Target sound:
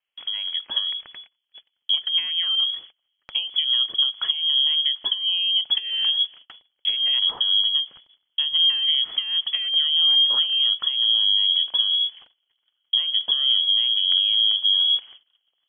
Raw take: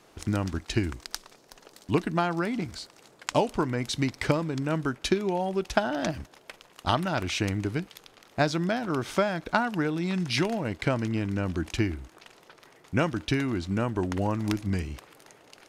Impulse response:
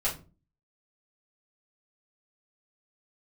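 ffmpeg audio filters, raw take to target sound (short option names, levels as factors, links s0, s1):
-af "acompressor=threshold=0.0355:ratio=6,asubboost=boost=11.5:cutoff=250,alimiter=limit=0.251:level=0:latency=1:release=213,lowpass=f=2900:t=q:w=0.5098,lowpass=f=2900:t=q:w=0.6013,lowpass=f=2900:t=q:w=0.9,lowpass=f=2900:t=q:w=2.563,afreqshift=-3400,agate=range=0.0447:threshold=0.00794:ratio=16:detection=peak"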